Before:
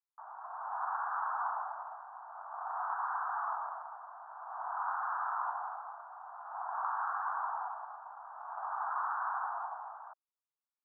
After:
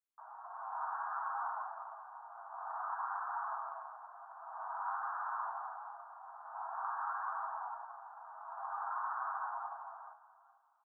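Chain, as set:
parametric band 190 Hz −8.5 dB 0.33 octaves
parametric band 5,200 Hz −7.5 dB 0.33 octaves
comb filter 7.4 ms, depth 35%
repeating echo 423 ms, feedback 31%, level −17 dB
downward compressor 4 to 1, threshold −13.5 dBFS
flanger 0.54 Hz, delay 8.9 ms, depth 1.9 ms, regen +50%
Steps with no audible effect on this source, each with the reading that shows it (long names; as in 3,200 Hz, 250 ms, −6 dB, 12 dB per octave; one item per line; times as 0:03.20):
parametric band 190 Hz: nothing at its input below 570 Hz
parametric band 5,200 Hz: nothing at its input above 1,800 Hz
downward compressor, threshold −13.5 dBFS: peak of its input −22.0 dBFS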